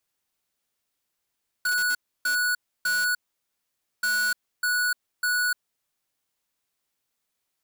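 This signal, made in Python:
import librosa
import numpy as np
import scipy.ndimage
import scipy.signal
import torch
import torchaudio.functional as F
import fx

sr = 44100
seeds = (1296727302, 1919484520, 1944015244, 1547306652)

y = fx.beep_pattern(sr, wave='square', hz=1470.0, on_s=0.3, off_s=0.3, beeps=3, pause_s=0.88, groups=2, level_db=-24.0)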